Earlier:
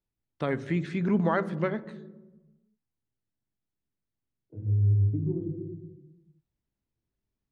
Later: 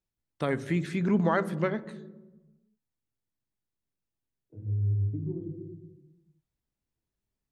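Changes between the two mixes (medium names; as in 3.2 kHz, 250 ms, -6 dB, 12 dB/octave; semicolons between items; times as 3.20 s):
second voice -4.5 dB; master: remove distance through air 88 m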